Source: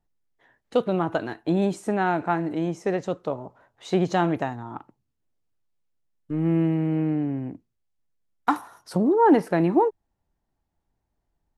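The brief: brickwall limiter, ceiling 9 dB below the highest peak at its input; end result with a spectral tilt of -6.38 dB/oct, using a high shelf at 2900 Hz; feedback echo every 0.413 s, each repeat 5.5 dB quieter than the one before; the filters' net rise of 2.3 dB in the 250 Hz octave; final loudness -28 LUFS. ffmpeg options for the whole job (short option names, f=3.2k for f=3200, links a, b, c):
-af "equalizer=f=250:t=o:g=3.5,highshelf=f=2.9k:g=-8.5,alimiter=limit=-15dB:level=0:latency=1,aecho=1:1:413|826|1239|1652|2065|2478|2891:0.531|0.281|0.149|0.079|0.0419|0.0222|0.0118,volume=-2.5dB"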